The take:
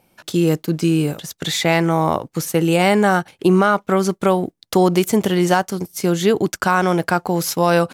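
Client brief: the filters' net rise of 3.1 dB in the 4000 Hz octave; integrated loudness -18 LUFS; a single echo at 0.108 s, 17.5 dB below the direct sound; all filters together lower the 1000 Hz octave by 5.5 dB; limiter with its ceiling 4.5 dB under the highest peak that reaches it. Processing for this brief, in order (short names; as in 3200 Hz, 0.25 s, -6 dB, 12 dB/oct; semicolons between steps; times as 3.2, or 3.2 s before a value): bell 1000 Hz -8 dB; bell 4000 Hz +4.5 dB; limiter -9 dBFS; echo 0.108 s -17.5 dB; gain +2 dB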